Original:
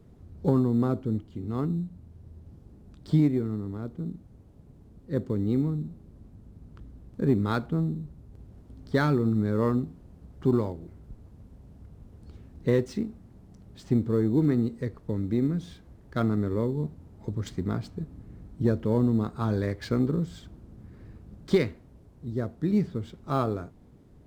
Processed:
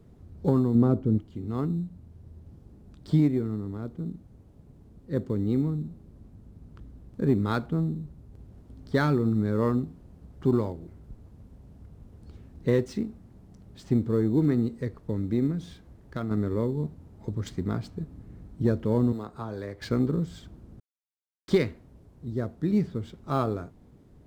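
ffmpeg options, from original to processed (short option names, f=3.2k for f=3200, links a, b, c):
-filter_complex "[0:a]asettb=1/sr,asplit=3[a][b][c];[a]atrim=end=0.754[d];[b]atrim=start=0.75:end=1.18,asetpts=PTS-STARTPTS,afade=t=in:d=0.004:c=qsin,afade=t=out:st=0.426:d=0.004:c=qsin,tiltshelf=f=870:g=5[e];[c]atrim=start=1.176[f];[d][e]acrossfade=d=0.004:c1=hsin:c2=qsin[g];[g][f]acrossfade=d=0.004:c1=qsin:c2=hsin,asettb=1/sr,asplit=3[h][i][j];[h]atrim=end=15.514[k];[i]atrim=start=15.51:end=16.31,asetpts=PTS-STARTPTS,afade=t=in:d=0.004:c=qsin,afade=t=out:st=0.796:d=0.004:c=qsin,acompressor=threshold=-26dB:ratio=6:attack=3.2:release=140:knee=1:detection=peak[l];[j]atrim=start=16.306[m];[k][l]acrossfade=d=0.004:c1=hsin:c2=qsin[n];[n][m]acrossfade=d=0.004:c1=qsin:c2=hsin,asettb=1/sr,asplit=3[o][p][q];[o]atrim=end=19.124[r];[p]atrim=start=19.12:end=19.82,asetpts=PTS-STARTPTS,afade=t=in:d=0.004:c=qsin,afade=t=out:st=0.696:d=0.004:c=qsin,acrossover=split=400|1100[s][t][u];[s]acompressor=threshold=-38dB:ratio=4[v];[t]acompressor=threshold=-36dB:ratio=4[w];[u]acompressor=threshold=-49dB:ratio=4[x];[v][w][x]amix=inputs=3:normalize=0[y];[q]atrim=start=19.816[z];[r][y]acrossfade=d=0.004:c1=hsin:c2=qsin[aa];[aa][z]acrossfade=d=0.004:c1=qsin:c2=hsin,asplit=3[ab][ac][ad];[ab]atrim=end=20.8,asetpts=PTS-STARTPTS,afade=t=out:st=20.796:d=0.004:c=hsin[ae];[ac]atrim=start=20.8:end=21.48,asetpts=PTS-STARTPTS,volume=0[af];[ad]atrim=start=21.48,asetpts=PTS-STARTPTS,afade=t=in:d=0.004:c=hsin[ag];[ae][af][ag]concat=n=3:v=0:a=1"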